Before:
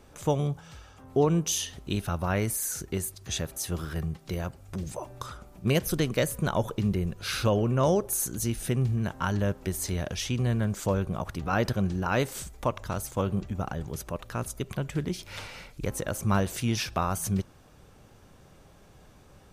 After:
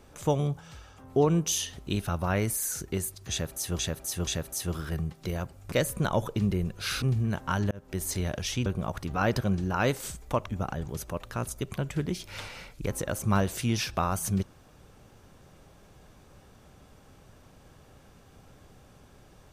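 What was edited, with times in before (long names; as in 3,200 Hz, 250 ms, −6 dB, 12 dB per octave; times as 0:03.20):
0:03.31–0:03.79: repeat, 3 plays
0:04.76–0:06.14: remove
0:07.44–0:08.75: remove
0:09.44–0:09.76: fade in
0:10.39–0:10.98: remove
0:12.79–0:13.46: remove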